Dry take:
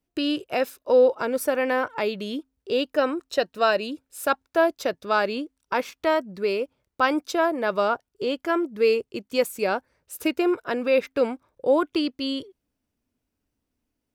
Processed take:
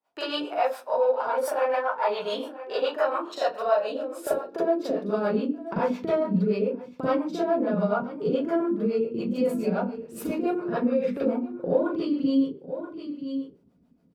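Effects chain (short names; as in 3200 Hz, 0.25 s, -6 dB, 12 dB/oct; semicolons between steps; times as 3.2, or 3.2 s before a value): in parallel at -10 dB: soft clip -23 dBFS, distortion -8 dB; on the sum: notches 50/100/150/200/250/300/350 Hz; limiter -17 dBFS, peak gain reduction 10 dB; tilt -4 dB/oct; echo 0.976 s -22.5 dB; high-pass sweep 880 Hz -> 180 Hz, 3.5–5.41; compressor 6:1, threshold -29 dBFS, peak gain reduction 15.5 dB; reverb RT60 0.35 s, pre-delay 36 ms, DRR -9.5 dB; harmonic tremolo 7.1 Hz, depth 70%, crossover 440 Hz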